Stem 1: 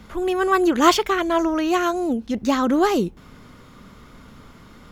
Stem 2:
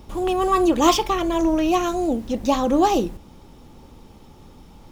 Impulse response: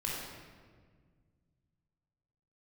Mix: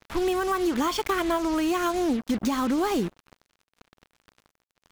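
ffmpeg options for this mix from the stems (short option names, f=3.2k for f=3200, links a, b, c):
-filter_complex "[0:a]alimiter=limit=-13.5dB:level=0:latency=1:release=362,volume=2.5dB[a];[1:a]volume=-13.5dB,asplit=2[b][c];[c]volume=-17.5dB[d];[2:a]atrim=start_sample=2205[e];[d][e]afir=irnorm=-1:irlink=0[f];[a][b][f]amix=inputs=3:normalize=0,acrusher=bits=4:mix=0:aa=0.5,acompressor=threshold=-22dB:ratio=6"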